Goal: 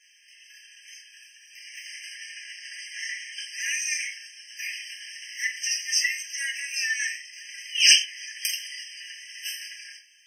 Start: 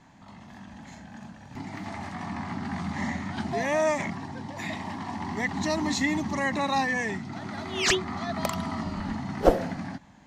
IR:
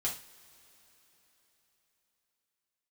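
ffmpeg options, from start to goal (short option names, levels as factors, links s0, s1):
-filter_complex "[0:a]highshelf=f=2500:t=q:w=1.5:g=10.5[s0];[1:a]atrim=start_sample=2205,afade=t=out:st=0.21:d=0.01,atrim=end_sample=9702,asetrate=52920,aresample=44100[s1];[s0][s1]afir=irnorm=-1:irlink=0,afftfilt=real='re*eq(mod(floor(b*sr/1024/1600),2),1)':imag='im*eq(mod(floor(b*sr/1024/1600),2),1)':win_size=1024:overlap=0.75,volume=1.19"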